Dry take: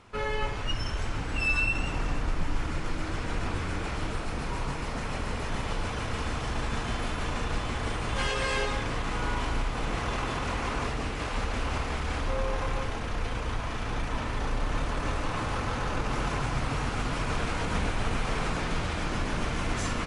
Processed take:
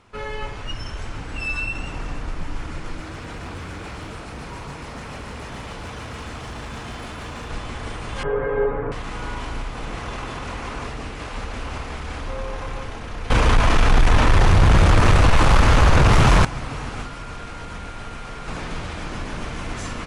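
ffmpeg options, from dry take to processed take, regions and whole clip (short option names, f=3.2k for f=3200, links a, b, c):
-filter_complex "[0:a]asettb=1/sr,asplit=3[a][b][c];[a]atrim=end=3.004[d];[b]atrim=start=3:end=7.5,asetpts=PTS-STARTPTS,afade=t=in:d=0.004:c=qsin,afade=t=out:st=4.496:d=0.004:c=qsin,highpass=48,asoftclip=type=hard:threshold=-28.5dB[e];[c]atrim=start=7.496[f];[d][e]acrossfade=d=0.004:c1=hsin:c2=qsin[g];[g][f]acrossfade=d=0.004:c1=qsin:c2=hsin,asettb=1/sr,asplit=3[h][i][j];[h]atrim=end=8.234[k];[i]atrim=start=8.23:end=8.92,asetpts=PTS-STARTPTS,afade=t=in:d=0.004:c=qsin,afade=t=out:st=0.686:d=0.004:c=qsin,lowpass=f=1.6k:w=0.5412,lowpass=f=1.6k:w=1.3066,equalizer=f=440:t=o:w=0.45:g=12,aecho=1:1:7:0.93,atrim=end_sample=30429[l];[j]atrim=start=8.916[m];[k][l]acrossfade=d=0.004:c1=hsin:c2=qsin[n];[n][m]acrossfade=d=0.004:c1=qsin:c2=hsin,asettb=1/sr,asplit=3[o][p][q];[o]atrim=end=13.304[r];[p]atrim=start=13.3:end=16.45,asetpts=PTS-STARTPTS,afade=t=in:d=0.004:c=qsin,afade=t=out:st=3.146:d=0.004:c=qsin,asubboost=boost=8:cutoff=59,aeval=exprs='0.355*sin(PI/2*4.47*val(0)/0.355)':c=same[s];[q]atrim=start=16.446[t];[r][s]acrossfade=d=0.004:c1=hsin:c2=qsin[u];[u][t]acrossfade=d=0.004:c1=qsin:c2=hsin,asettb=1/sr,asplit=3[v][w][x];[v]atrim=end=17.044[y];[w]atrim=start=17.04:end=18.48,asetpts=PTS-STARTPTS,afade=t=in:d=0.004:c=qsin,afade=t=out:st=1.436:d=0.004:c=qsin,acrossover=split=110|500|1200[z][aa][ab][ac];[z]acompressor=threshold=-35dB:ratio=3[ad];[aa]acompressor=threshold=-42dB:ratio=3[ae];[ab]acompressor=threshold=-44dB:ratio=3[af];[ac]acompressor=threshold=-41dB:ratio=3[ag];[ad][ae][af][ag]amix=inputs=4:normalize=0,aeval=exprs='val(0)+0.00891*sin(2*PI*1400*n/s)':c=same[ah];[x]atrim=start=18.476[ai];[y][ah]acrossfade=d=0.004:c1=hsin:c2=qsin[aj];[aj][ai]acrossfade=d=0.004:c1=qsin:c2=hsin"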